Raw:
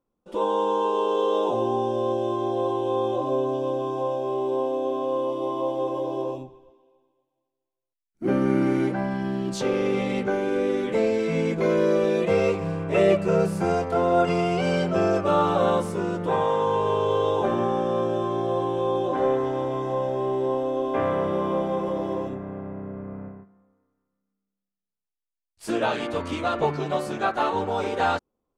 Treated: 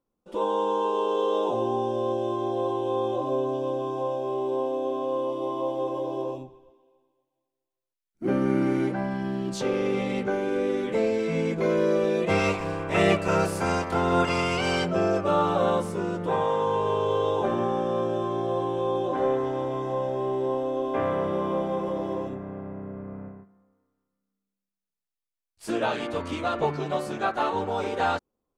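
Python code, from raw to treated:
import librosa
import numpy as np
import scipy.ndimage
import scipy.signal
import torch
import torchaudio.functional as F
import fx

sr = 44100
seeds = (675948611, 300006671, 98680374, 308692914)

y = fx.spec_clip(x, sr, under_db=15, at=(12.28, 14.84), fade=0.02)
y = y * librosa.db_to_amplitude(-2.0)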